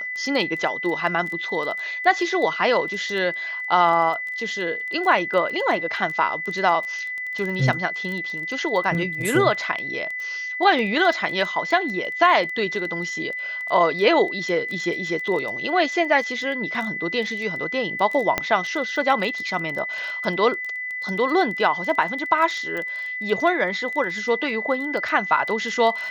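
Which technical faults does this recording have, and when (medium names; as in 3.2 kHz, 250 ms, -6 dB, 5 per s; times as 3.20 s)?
crackle 14 per s -27 dBFS
whine 2 kHz -27 dBFS
18.38 s: pop -6 dBFS
22.77 s: pop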